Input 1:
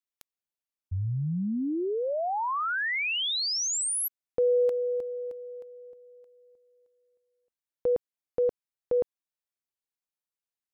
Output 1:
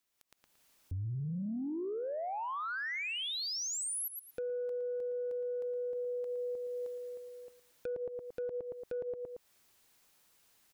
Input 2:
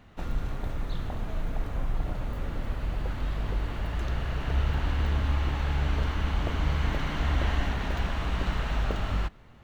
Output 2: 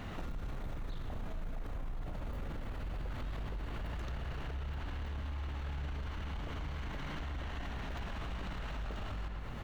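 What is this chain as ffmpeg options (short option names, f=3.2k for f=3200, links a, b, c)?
-filter_complex "[0:a]asplit=2[a][b];[b]adelay=114,lowpass=f=3.8k:p=1,volume=-13dB,asplit=2[c][d];[d]adelay=114,lowpass=f=3.8k:p=1,volume=0.25,asplit=2[e][f];[f]adelay=114,lowpass=f=3.8k:p=1,volume=0.25[g];[c][e][g]amix=inputs=3:normalize=0[h];[a][h]amix=inputs=2:normalize=0,acompressor=threshold=-37dB:ratio=16:attack=30:release=991:detection=peak,asoftclip=type=tanh:threshold=-32dB,dynaudnorm=f=120:g=5:m=14.5dB,alimiter=level_in=20dB:limit=-24dB:level=0:latency=1:release=323,volume=-20dB,volume=10.5dB"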